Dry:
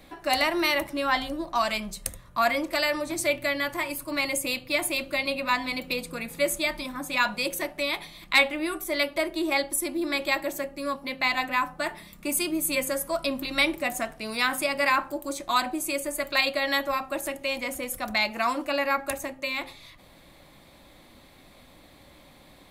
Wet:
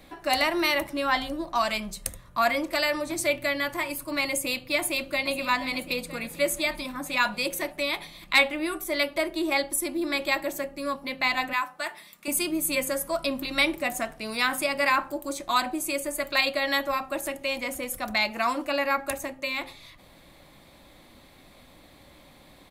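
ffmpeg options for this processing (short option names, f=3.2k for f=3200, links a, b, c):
-filter_complex "[0:a]asplit=2[a][b];[b]afade=t=in:st=4.77:d=0.01,afade=t=out:st=5.31:d=0.01,aecho=0:1:480|960|1440|1920|2400|2880|3360:0.251189|0.150713|0.0904279|0.0542567|0.032554|0.0195324|0.0117195[c];[a][c]amix=inputs=2:normalize=0,asettb=1/sr,asplit=3[d][e][f];[d]atrim=end=11.534[g];[e]atrim=start=11.53:end=12.28,asetpts=PTS-STARTPTS,afade=t=in:d=0.004:c=qsin,afade=t=out:st=0.746:d=0.004:c=qsin,highpass=f=920:p=1[h];[f]atrim=start=12.276[i];[g][h]acrossfade=d=0.004:c1=hsin:c2=qsin[j];[j][i]acrossfade=d=0.004:c1=qsin:c2=hsin"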